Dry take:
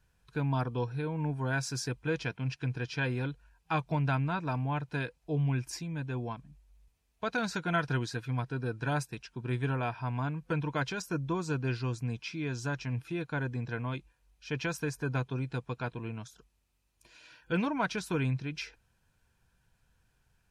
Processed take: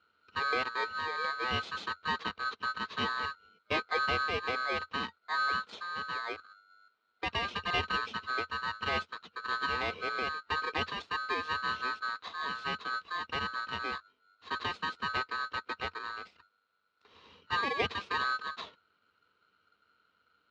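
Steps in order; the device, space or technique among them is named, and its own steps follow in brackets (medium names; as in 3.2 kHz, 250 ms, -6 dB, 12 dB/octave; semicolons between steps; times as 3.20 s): ring modulator pedal into a guitar cabinet (polarity switched at an audio rate 1.4 kHz; cabinet simulation 84–3900 Hz, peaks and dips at 86 Hz +6 dB, 130 Hz -10 dB, 210 Hz +4 dB, 460 Hz +7 dB, 1.7 kHz -4 dB)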